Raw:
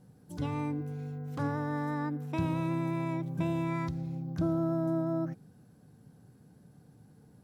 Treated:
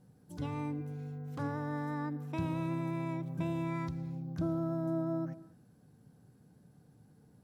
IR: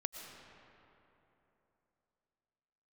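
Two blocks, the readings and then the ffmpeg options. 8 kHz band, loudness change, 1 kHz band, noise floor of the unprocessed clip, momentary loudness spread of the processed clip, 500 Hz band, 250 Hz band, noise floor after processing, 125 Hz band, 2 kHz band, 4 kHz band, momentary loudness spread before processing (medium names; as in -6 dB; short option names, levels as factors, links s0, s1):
no reading, -3.5 dB, -4.0 dB, -60 dBFS, 8 LU, -4.0 dB, -3.5 dB, -64 dBFS, -3.5 dB, -4.0 dB, -4.0 dB, 8 LU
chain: -filter_complex "[0:a]asplit=2[s0][s1];[1:a]atrim=start_sample=2205,afade=t=out:st=0.33:d=0.01,atrim=end_sample=14994[s2];[s1][s2]afir=irnorm=-1:irlink=0,volume=0.335[s3];[s0][s3]amix=inputs=2:normalize=0,volume=0.501"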